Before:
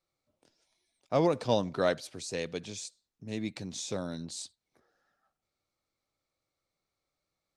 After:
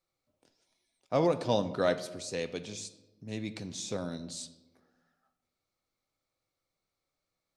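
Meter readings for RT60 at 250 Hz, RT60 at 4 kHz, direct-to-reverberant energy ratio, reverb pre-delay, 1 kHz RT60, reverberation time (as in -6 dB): 1.5 s, 0.65 s, 10.0 dB, 4 ms, 1.0 s, 1.1 s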